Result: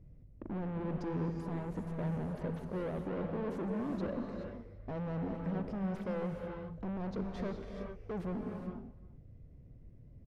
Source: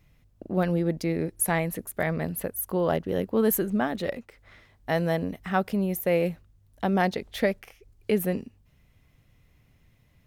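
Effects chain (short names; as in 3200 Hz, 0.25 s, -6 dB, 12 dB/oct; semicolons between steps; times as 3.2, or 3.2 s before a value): band shelf 1700 Hz -13.5 dB 2.6 oct; in parallel at -3 dB: compressor, threshold -37 dBFS, peak gain reduction 17 dB; on the sum: limiter -21.5 dBFS, peak gain reduction 9 dB; hard clip -36 dBFS, distortion -5 dB; tape spacing loss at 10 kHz 33 dB; echo 0.352 s -20.5 dB; non-linear reverb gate 0.45 s rising, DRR 2.5 dB; mismatched tape noise reduction decoder only; gain +1 dB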